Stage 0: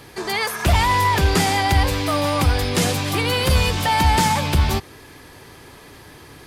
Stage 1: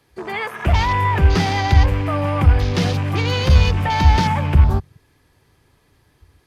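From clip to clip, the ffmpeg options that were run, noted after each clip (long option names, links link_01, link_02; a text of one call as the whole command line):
ffmpeg -i in.wav -filter_complex "[0:a]afwtdn=0.0398,acrossover=split=150[link_01][link_02];[link_01]dynaudnorm=framelen=350:gausssize=5:maxgain=12dB[link_03];[link_03][link_02]amix=inputs=2:normalize=0,volume=-1.5dB" out.wav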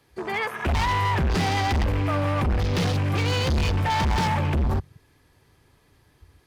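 ffmpeg -i in.wav -af "asoftclip=type=hard:threshold=-18.5dB,volume=-1.5dB" out.wav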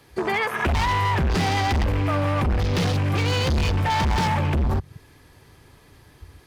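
ffmpeg -i in.wav -af "acompressor=threshold=-29dB:ratio=6,volume=8.5dB" out.wav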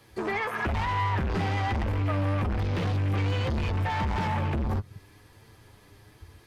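ffmpeg -i in.wav -filter_complex "[0:a]flanger=delay=8.8:depth=1.3:regen=39:speed=1.1:shape=triangular,asoftclip=type=tanh:threshold=-23.5dB,acrossover=split=2900[link_01][link_02];[link_02]acompressor=threshold=-49dB:ratio=4:attack=1:release=60[link_03];[link_01][link_03]amix=inputs=2:normalize=0,volume=1dB" out.wav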